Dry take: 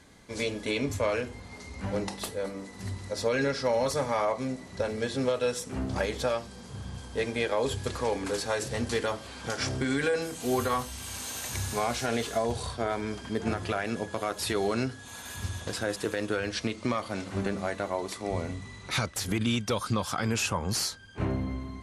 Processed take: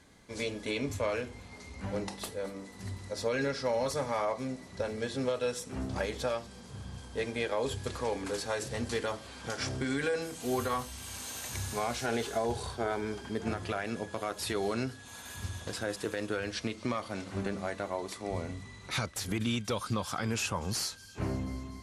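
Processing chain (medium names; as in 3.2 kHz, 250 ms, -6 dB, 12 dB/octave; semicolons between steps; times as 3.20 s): 12.05–13.32 s: small resonant body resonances 390/830/1500 Hz, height 8 dB; on a send: feedback echo behind a high-pass 242 ms, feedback 75%, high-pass 2.9 kHz, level -20.5 dB; on the sum: trim -4 dB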